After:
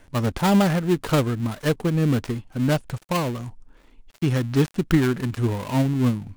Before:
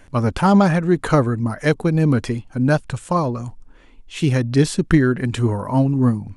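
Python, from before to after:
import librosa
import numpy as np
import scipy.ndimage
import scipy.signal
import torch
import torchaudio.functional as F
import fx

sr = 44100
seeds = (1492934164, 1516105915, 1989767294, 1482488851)

y = fx.dead_time(x, sr, dead_ms=0.23)
y = y * 10.0 ** (-4.0 / 20.0)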